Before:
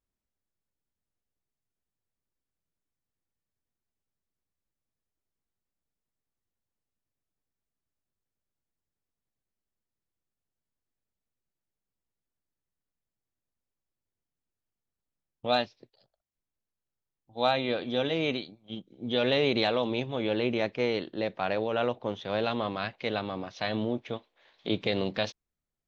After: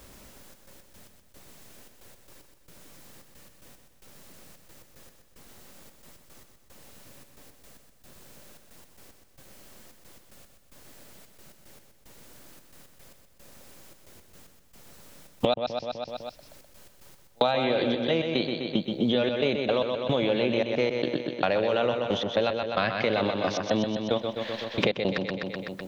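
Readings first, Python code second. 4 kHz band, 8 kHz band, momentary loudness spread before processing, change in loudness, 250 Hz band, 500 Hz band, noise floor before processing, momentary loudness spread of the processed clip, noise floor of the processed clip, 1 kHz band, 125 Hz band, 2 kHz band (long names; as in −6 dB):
+2.0 dB, can't be measured, 13 LU, +2.5 dB, +4.0 dB, +4.0 dB, below −85 dBFS, 7 LU, −58 dBFS, +2.0 dB, +3.0 dB, +2.5 dB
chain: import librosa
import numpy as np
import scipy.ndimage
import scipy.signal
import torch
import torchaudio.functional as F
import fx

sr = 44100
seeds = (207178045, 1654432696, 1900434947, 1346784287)

p1 = fx.peak_eq(x, sr, hz=560.0, db=6.5, octaves=0.2)
p2 = fx.over_compress(p1, sr, threshold_db=-36.0, ratio=-1.0)
p3 = p1 + F.gain(torch.from_numpy(p2), -0.5).numpy()
p4 = fx.step_gate(p3, sr, bpm=112, pattern='xxxx.x.x..', floor_db=-60.0, edge_ms=4.5)
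p5 = p4 + fx.echo_feedback(p4, sr, ms=126, feedback_pct=52, wet_db=-6.5, dry=0)
y = fx.band_squash(p5, sr, depth_pct=100)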